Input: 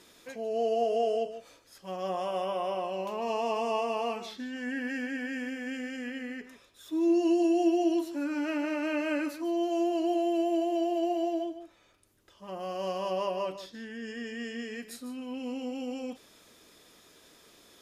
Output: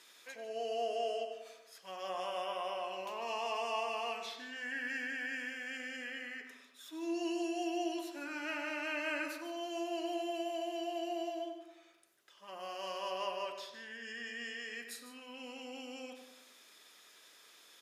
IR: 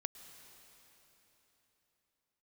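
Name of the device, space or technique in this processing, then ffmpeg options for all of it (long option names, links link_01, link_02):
filter by subtraction: -filter_complex "[0:a]asplit=2[link_01][link_02];[link_02]lowpass=1900,volume=-1[link_03];[link_01][link_03]amix=inputs=2:normalize=0,asplit=2[link_04][link_05];[link_05]adelay=95,lowpass=frequency=2100:poles=1,volume=-6dB,asplit=2[link_06][link_07];[link_07]adelay=95,lowpass=frequency=2100:poles=1,volume=0.55,asplit=2[link_08][link_09];[link_09]adelay=95,lowpass=frequency=2100:poles=1,volume=0.55,asplit=2[link_10][link_11];[link_11]adelay=95,lowpass=frequency=2100:poles=1,volume=0.55,asplit=2[link_12][link_13];[link_13]adelay=95,lowpass=frequency=2100:poles=1,volume=0.55,asplit=2[link_14][link_15];[link_15]adelay=95,lowpass=frequency=2100:poles=1,volume=0.55,asplit=2[link_16][link_17];[link_17]adelay=95,lowpass=frequency=2100:poles=1,volume=0.55[link_18];[link_04][link_06][link_08][link_10][link_12][link_14][link_16][link_18]amix=inputs=8:normalize=0,volume=-2.5dB"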